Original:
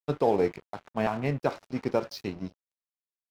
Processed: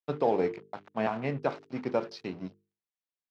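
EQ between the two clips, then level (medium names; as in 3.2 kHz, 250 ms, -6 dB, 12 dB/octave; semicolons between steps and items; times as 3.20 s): band-pass 130–4400 Hz; hum notches 50/100/150/200/250/300/350/400/450 Hz; -1.5 dB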